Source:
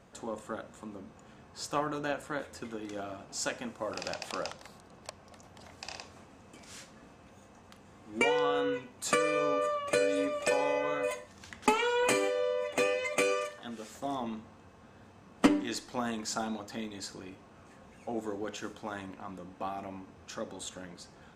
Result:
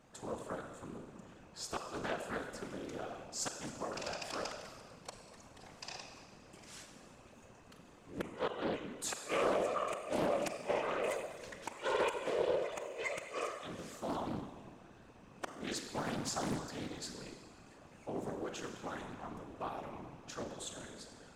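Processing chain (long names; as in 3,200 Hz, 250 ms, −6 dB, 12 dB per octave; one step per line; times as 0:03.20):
high-shelf EQ 7,500 Hz +4 dB
gate with flip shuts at −18 dBFS, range −32 dB
four-comb reverb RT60 1.7 s, combs from 32 ms, DRR 5.5 dB
random phases in short frames
highs frequency-modulated by the lows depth 0.77 ms
level −4.5 dB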